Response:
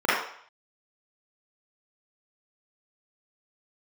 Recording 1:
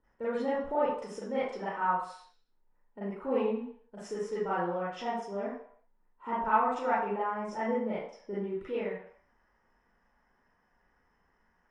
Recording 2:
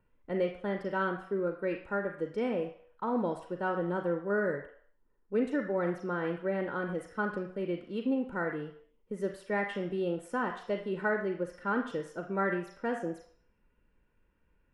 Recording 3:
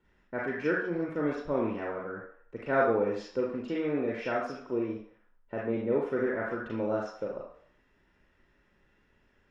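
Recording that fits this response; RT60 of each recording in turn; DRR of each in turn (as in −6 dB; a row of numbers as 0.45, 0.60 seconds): 1; 0.60, 0.60, 0.60 seconds; −11.0, 5.0, −3.5 decibels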